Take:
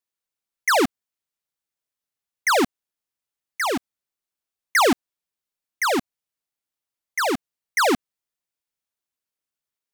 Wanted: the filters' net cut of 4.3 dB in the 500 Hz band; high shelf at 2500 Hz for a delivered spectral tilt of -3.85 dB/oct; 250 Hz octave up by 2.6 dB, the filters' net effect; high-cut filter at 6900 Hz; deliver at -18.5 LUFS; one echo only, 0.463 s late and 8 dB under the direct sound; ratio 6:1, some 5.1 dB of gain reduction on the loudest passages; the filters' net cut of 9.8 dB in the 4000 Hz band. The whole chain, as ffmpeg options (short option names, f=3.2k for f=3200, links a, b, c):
-af "lowpass=6.9k,equalizer=f=250:t=o:g=5.5,equalizer=f=500:t=o:g=-7,highshelf=f=2.5k:g=-8,equalizer=f=4k:t=o:g=-5,acompressor=threshold=-19dB:ratio=6,aecho=1:1:463:0.398,volume=10dB"